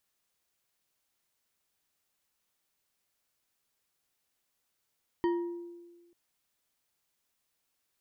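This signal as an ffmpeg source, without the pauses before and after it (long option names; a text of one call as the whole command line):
ffmpeg -f lavfi -i "aevalsrc='0.0631*pow(10,-3*t/1.41)*sin(2*PI*345*t)+0.0251*pow(10,-3*t/0.693)*sin(2*PI*951.2*t)+0.01*pow(10,-3*t/0.433)*sin(2*PI*1864.4*t)+0.00398*pow(10,-3*t/0.304)*sin(2*PI*3081.9*t)+0.00158*pow(10,-3*t/0.23)*sin(2*PI*4602.3*t)':duration=0.89:sample_rate=44100" out.wav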